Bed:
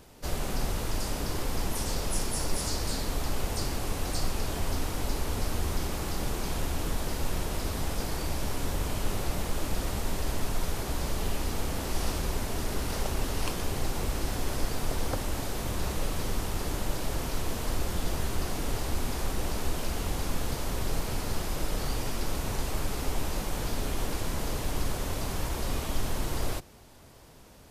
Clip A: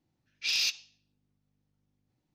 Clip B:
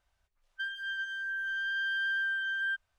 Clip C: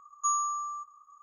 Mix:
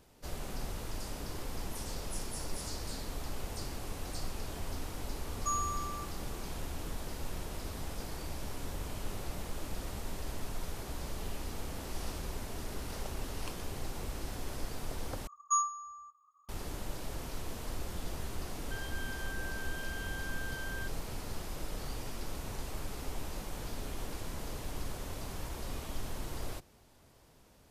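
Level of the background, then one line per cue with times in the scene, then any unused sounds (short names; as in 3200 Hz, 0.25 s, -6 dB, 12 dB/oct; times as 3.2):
bed -9 dB
5.22 add C -6 dB
15.27 replace with C -0.5 dB + reverb removal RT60 1.5 s
18.12 add B -6 dB + compressor, threshold -36 dBFS
not used: A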